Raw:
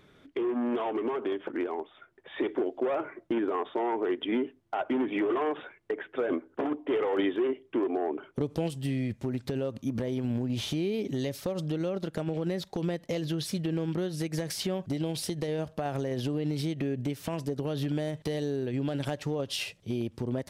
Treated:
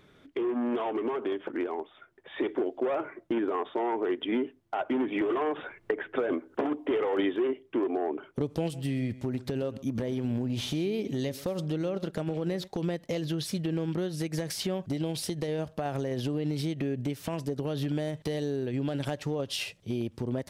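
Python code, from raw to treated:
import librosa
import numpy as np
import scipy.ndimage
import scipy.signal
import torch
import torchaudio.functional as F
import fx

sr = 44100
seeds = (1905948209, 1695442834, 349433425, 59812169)

y = fx.band_squash(x, sr, depth_pct=100, at=(5.21, 6.91))
y = fx.echo_single(y, sr, ms=130, db=-17.0, at=(8.72, 12.66), fade=0.02)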